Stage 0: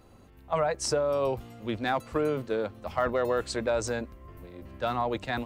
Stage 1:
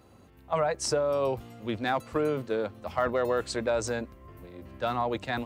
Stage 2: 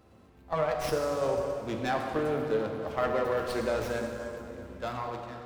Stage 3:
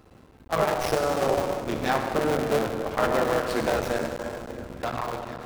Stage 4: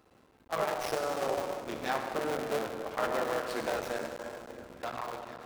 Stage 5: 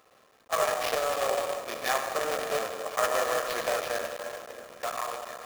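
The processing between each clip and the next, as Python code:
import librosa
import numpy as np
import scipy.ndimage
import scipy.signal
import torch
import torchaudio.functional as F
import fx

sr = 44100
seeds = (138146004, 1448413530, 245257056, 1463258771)

y1 = scipy.signal.sosfilt(scipy.signal.butter(2, 63.0, 'highpass', fs=sr, output='sos'), x)
y2 = fx.fade_out_tail(y1, sr, length_s=0.77)
y2 = fx.rev_plate(y2, sr, seeds[0], rt60_s=3.0, hf_ratio=0.65, predelay_ms=0, drr_db=1.5)
y2 = fx.running_max(y2, sr, window=5)
y2 = y2 * 10.0 ** (-3.0 / 20.0)
y3 = fx.cycle_switch(y2, sr, every=3, mode='muted')
y3 = y3 * 10.0 ** (6.5 / 20.0)
y4 = fx.low_shelf(y3, sr, hz=200.0, db=-11.5)
y4 = y4 * 10.0 ** (-6.5 / 20.0)
y5 = fx.highpass(y4, sr, hz=820.0, slope=6)
y5 = y5 + 0.44 * np.pad(y5, (int(1.7 * sr / 1000.0), 0))[:len(y5)]
y5 = fx.sample_hold(y5, sr, seeds[1], rate_hz=8200.0, jitter_pct=20)
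y5 = y5 * 10.0 ** (6.5 / 20.0)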